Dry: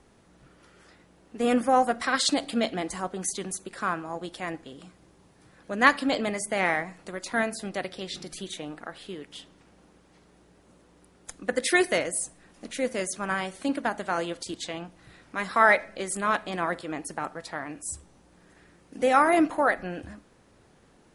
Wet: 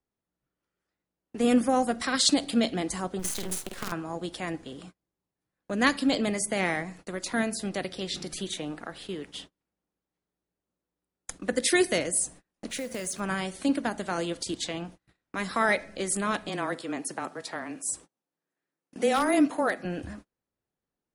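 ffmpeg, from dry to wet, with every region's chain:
-filter_complex "[0:a]asettb=1/sr,asplit=3[a][b][c];[a]atrim=end=3.194[d];[b]atrim=start=3.19:end=3.92,asetpts=PTS-STARTPTS,afade=t=in:d=0.004:c=qsin,afade=t=out:st=0.726:d=0.004:c=qsin,acompressor=threshold=-30dB:ratio=20:attack=3.2:release=140:knee=1:detection=peak,acrusher=bits=6:dc=4:mix=0:aa=0.000001,asplit=2[e][f];[f]adelay=49,volume=-4dB[g];[e][g]amix=inputs=2:normalize=0,atrim=end_sample=32193[h];[c]atrim=start=3.916[i];[d][h]acrossfade=d=0.004:c1=hsin:c2=qsin[j];[j][i]acrossfade=d=0.004:c1=qsin:c2=hsin,asettb=1/sr,asplit=3[k][l][m];[k]atrim=end=12.704[n];[l]atrim=start=12.7:end=13.2,asetpts=PTS-STARTPTS,afade=t=in:d=0.004:c=qsin,afade=t=out:st=0.496:d=0.004:c=qsin,equalizer=f=320:t=o:w=0.38:g=-5,acompressor=threshold=-31dB:ratio=8:attack=3.2:release=140:knee=1:detection=peak,acrusher=bits=4:mode=log:mix=0:aa=0.000001[o];[m]atrim=start=13.196[p];[n][o]acrossfade=d=0.004:c1=hsin:c2=qsin[q];[q][p]acrossfade=d=0.004:c1=qsin:c2=hsin,asettb=1/sr,asplit=3[r][s][t];[r]atrim=end=16.494[u];[s]atrim=start=16.49:end=19.85,asetpts=PTS-STARTPTS,afade=t=in:d=0.004:c=qsin,afade=t=out:st=3.356:d=0.004:c=qsin,highpass=250,volume=12dB,asoftclip=hard,volume=-12dB,afreqshift=-17[v];[t]atrim=start=19.846[w];[u][v]acrossfade=d=0.004:c1=hsin:c2=qsin[x];[x][w]acrossfade=d=0.004:c1=qsin:c2=hsin,agate=range=-34dB:threshold=-47dB:ratio=16:detection=peak,acrossover=split=410|3000[y][z][aa];[z]acompressor=threshold=-48dB:ratio=1.5[ab];[y][ab][aa]amix=inputs=3:normalize=0,volume=3.5dB"

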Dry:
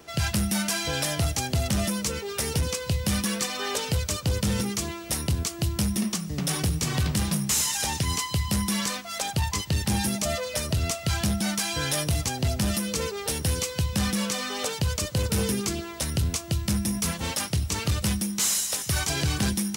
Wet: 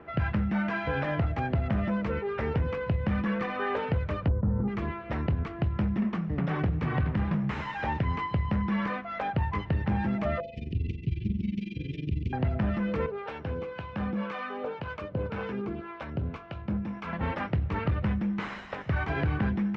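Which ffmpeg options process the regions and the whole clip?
-filter_complex "[0:a]asettb=1/sr,asplit=3[a][b][c];[a]atrim=end=4.284[d];[b]atrim=start=4.28:end=4.68,asetpts=PTS-STARTPTS,afade=t=in:d=0.004:c=qsin,afade=t=out:st=0.396:d=0.004:c=qsin,lowpass=f=1.2k:w=0.5412,lowpass=f=1.2k:w=1.3066,lowshelf=f=190:g=9.5,asoftclip=type=hard:threshold=-12.5dB[e];[c]atrim=start=4.676[f];[d][e]acrossfade=d=0.004:c1=hsin:c2=qsin[g];[g][f]acrossfade=d=0.004:c1=qsin:c2=hsin,asettb=1/sr,asplit=3[h][i][j];[h]atrim=end=10.404[k];[i]atrim=start=10.4:end=12.33,asetpts=PTS-STARTPTS,afade=t=in:d=0.004:c=qsin,afade=t=out:st=1.926:d=0.004:c=qsin,tremolo=f=22:d=0.919,asuperstop=centerf=1000:order=12:qfactor=0.5,aecho=1:1:139:0.316,atrim=end_sample=85113[l];[j]atrim=start=12.326[m];[k][l]acrossfade=d=0.004:c1=hsin:c2=qsin[n];[n][m]acrossfade=d=0.004:c1=qsin:c2=hsin,asettb=1/sr,asplit=3[o][p][q];[o]atrim=end=13.064[r];[p]atrim=start=13.06:end=17.13,asetpts=PTS-STARTPTS,afade=t=in:d=0.004:c=qsin,afade=t=out:st=4.066:d=0.004:c=qsin,lowshelf=f=150:g=-12,bandreject=f=1.9k:w=7.3,acrossover=split=670[s][t];[s]aeval=exprs='val(0)*(1-0.7/2+0.7/2*cos(2*PI*1.9*n/s))':c=same[u];[t]aeval=exprs='val(0)*(1-0.7/2-0.7/2*cos(2*PI*1.9*n/s))':c=same[v];[u][v]amix=inputs=2:normalize=0[w];[q]atrim=start=17.126[x];[r][w]acrossfade=d=0.004:c1=hsin:c2=qsin[y];[y][x]acrossfade=d=0.004:c1=qsin:c2=hsin,lowpass=f=2k:w=0.5412,lowpass=f=2k:w=1.3066,bandreject=f=48.16:t=h:w=4,bandreject=f=96.32:t=h:w=4,bandreject=f=144.48:t=h:w=4,bandreject=f=192.64:t=h:w=4,bandreject=f=240.8:t=h:w=4,bandreject=f=288.96:t=h:w=4,bandreject=f=337.12:t=h:w=4,bandreject=f=385.28:t=h:w=4,bandreject=f=433.44:t=h:w=4,bandreject=f=481.6:t=h:w=4,bandreject=f=529.76:t=h:w=4,bandreject=f=577.92:t=h:w=4,bandreject=f=626.08:t=h:w=4,bandreject=f=674.24:t=h:w=4,bandreject=f=722.4:t=h:w=4,bandreject=f=770.56:t=h:w=4,acompressor=threshold=-26dB:ratio=6,volume=2.5dB"

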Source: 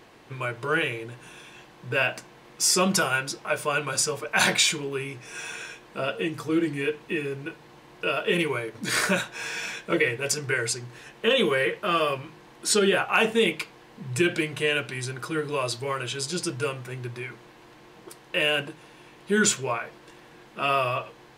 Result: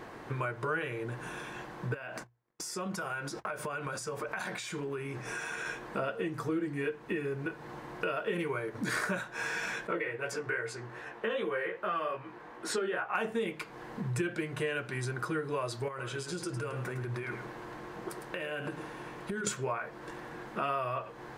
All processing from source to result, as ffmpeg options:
-filter_complex "[0:a]asettb=1/sr,asplit=3[a][b][c];[a]atrim=end=1.944[d];[b]atrim=start=1.94:end=5.66,asetpts=PTS-STARTPTS,afade=t=in:d=0.004:c=qsin,afade=t=out:st=3.716:d=0.004:c=qsin,agate=range=-42dB:threshold=-46dB:ratio=16:release=100:detection=peak,acompressor=threshold=-37dB:ratio=8:attack=3.2:release=140:knee=1:detection=peak,bandreject=f=60:t=h:w=6,bandreject=f=120:t=h:w=6[e];[c]atrim=start=5.656[f];[d][e]acrossfade=d=0.004:c1=hsin:c2=qsin[g];[g][f]acrossfade=d=0.004:c1=qsin:c2=hsin,asettb=1/sr,asplit=3[h][i][j];[h]atrim=end=9.874[k];[i]atrim=start=9.87:end=13.15,asetpts=PTS-STARTPTS,afade=t=in:d=0.004:c=qsin,afade=t=out:st=3.276:d=0.004:c=qsin,bass=f=250:g=-9,treble=f=4k:g=-9,flanger=delay=15.5:depth=3.1:speed=2.5[l];[j]atrim=start=13.146[m];[k][l]acrossfade=d=0.004:c1=hsin:c2=qsin[n];[n][m]acrossfade=d=0.004:c1=qsin:c2=hsin,asettb=1/sr,asplit=3[o][p][q];[o]atrim=end=15.884[r];[p]atrim=start=15.88:end=19.47,asetpts=PTS-STARTPTS,afade=t=in:d=0.004:c=qsin,afade=t=out:st=3.586:d=0.004:c=qsin,acompressor=threshold=-36dB:ratio=8:attack=3.2:release=140:knee=1:detection=peak,aecho=1:1:107:0.355,atrim=end_sample=158319[s];[q]atrim=start=19.466[t];[r][s]acrossfade=d=0.004:c1=hsin:c2=qsin[u];[u][t]acrossfade=d=0.004:c1=qsin:c2=hsin,highshelf=f=2.1k:t=q:w=1.5:g=-6.5,acompressor=threshold=-39dB:ratio=4,volume=6dB"

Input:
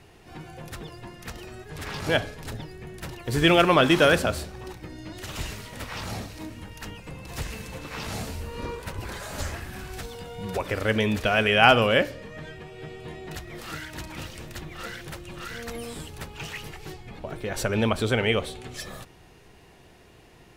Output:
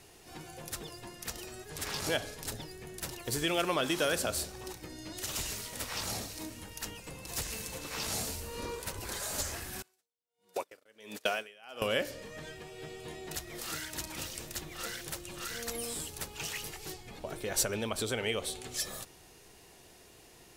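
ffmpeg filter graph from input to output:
-filter_complex "[0:a]asettb=1/sr,asplit=3[a][b][c];[a]atrim=end=9.824[d];[b]atrim=start=9.82:end=11.82,asetpts=PTS-STARTPTS,afade=t=in:d=0.004:c=qsin,afade=t=out:st=1.996:d=0.004:c=qsin,highpass=260,agate=range=-25dB:threshold=-32dB:ratio=16:release=100:detection=peak,aeval=exprs='val(0)*pow(10,-34*(0.5-0.5*cos(2*PI*1.4*n/s))/20)':c=same[e];[c]atrim=start=11.816[f];[d][e]acrossfade=d=0.004:c1=hsin:c2=qsin[g];[g][f]acrossfade=d=0.004:c1=qsin:c2=hsin,lowshelf=f=270:g=11.5,acompressor=threshold=-19dB:ratio=6,bass=f=250:g=-14,treble=f=4k:g=13,volume=-5.5dB"

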